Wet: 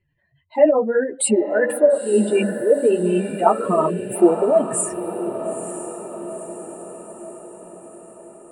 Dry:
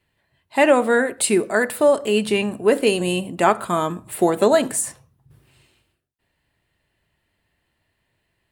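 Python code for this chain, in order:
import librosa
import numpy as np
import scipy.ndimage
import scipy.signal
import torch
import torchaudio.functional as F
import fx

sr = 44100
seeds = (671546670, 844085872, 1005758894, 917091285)

y = fx.spec_expand(x, sr, power=2.4)
y = fx.chorus_voices(y, sr, voices=4, hz=0.98, base_ms=10, depth_ms=4.6, mix_pct=45)
y = fx.echo_diffused(y, sr, ms=934, feedback_pct=55, wet_db=-10)
y = y * librosa.db_to_amplitude(4.0)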